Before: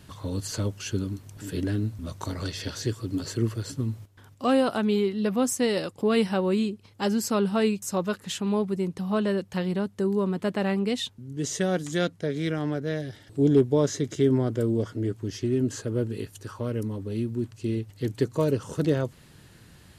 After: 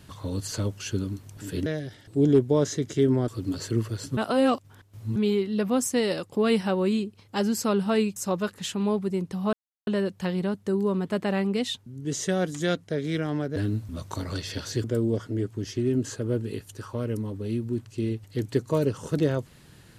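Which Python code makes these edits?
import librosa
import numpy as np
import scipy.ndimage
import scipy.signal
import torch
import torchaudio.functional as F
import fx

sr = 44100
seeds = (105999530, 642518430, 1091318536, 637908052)

y = fx.edit(x, sr, fx.swap(start_s=1.66, length_s=1.28, other_s=12.88, other_length_s=1.62),
    fx.reverse_span(start_s=3.83, length_s=0.99),
    fx.insert_silence(at_s=9.19, length_s=0.34), tone=tone)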